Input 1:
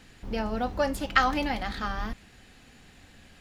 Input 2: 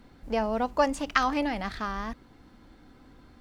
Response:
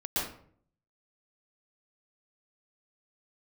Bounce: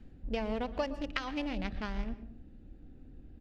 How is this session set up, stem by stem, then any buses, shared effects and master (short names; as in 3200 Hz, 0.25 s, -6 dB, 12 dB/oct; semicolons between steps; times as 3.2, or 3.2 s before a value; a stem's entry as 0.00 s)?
-13.5 dB, 0.00 s, no send, auto duck -10 dB, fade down 0.25 s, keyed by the second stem
-2.5 dB, 5.6 ms, send -20.5 dB, Wiener smoothing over 41 samples; resonant high shelf 1900 Hz +9 dB, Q 1.5; compressor 4:1, threshold -29 dBFS, peak gain reduction 12.5 dB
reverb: on, RT60 0.55 s, pre-delay 0.11 s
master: LPF 2300 Hz 6 dB/oct; low shelf 95 Hz +9 dB